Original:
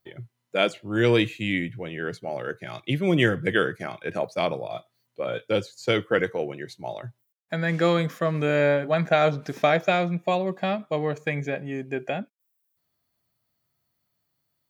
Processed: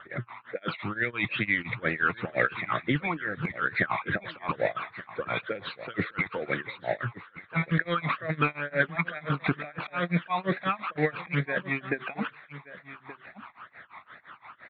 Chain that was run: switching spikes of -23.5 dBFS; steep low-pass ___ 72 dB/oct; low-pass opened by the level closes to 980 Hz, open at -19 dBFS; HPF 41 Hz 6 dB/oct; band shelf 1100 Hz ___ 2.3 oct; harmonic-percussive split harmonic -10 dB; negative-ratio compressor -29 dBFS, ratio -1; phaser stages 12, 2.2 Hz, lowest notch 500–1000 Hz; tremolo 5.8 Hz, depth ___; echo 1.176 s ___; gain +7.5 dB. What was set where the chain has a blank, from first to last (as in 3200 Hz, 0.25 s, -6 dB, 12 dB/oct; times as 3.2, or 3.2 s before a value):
3700 Hz, +9.5 dB, 96%, -16.5 dB